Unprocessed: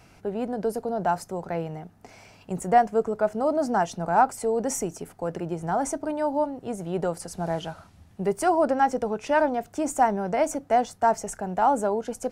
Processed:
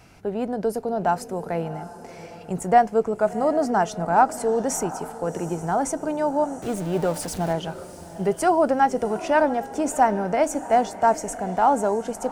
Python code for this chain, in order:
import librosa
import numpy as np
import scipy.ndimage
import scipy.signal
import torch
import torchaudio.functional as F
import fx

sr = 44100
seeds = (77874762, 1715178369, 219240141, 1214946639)

y = fx.zero_step(x, sr, step_db=-34.5, at=(6.62, 7.53))
y = fx.echo_diffused(y, sr, ms=729, feedback_pct=40, wet_db=-14.5)
y = y * 10.0 ** (2.5 / 20.0)